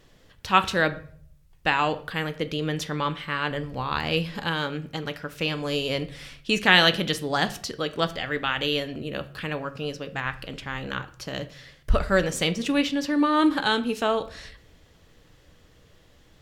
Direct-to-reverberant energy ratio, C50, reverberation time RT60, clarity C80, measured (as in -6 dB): 10.0 dB, 16.5 dB, 0.55 s, 19.5 dB